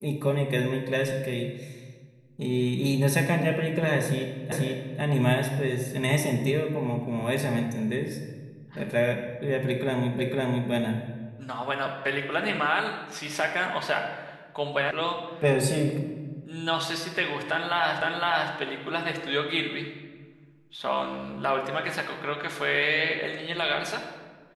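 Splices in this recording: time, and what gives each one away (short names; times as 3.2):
4.52 repeat of the last 0.49 s
10.19 repeat of the last 0.51 s
14.91 sound cut off
18.01 repeat of the last 0.51 s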